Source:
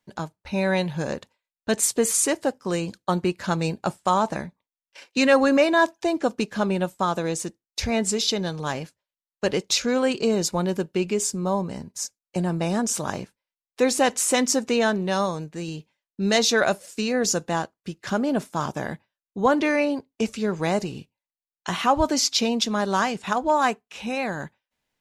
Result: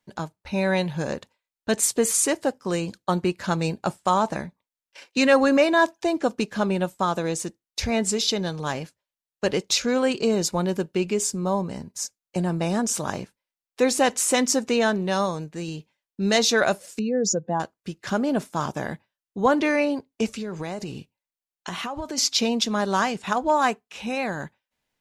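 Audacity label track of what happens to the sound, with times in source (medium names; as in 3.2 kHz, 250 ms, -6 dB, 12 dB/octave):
16.990000	17.600000	spectral contrast enhancement exponent 2
20.370000	22.180000	compression 10:1, threshold -27 dBFS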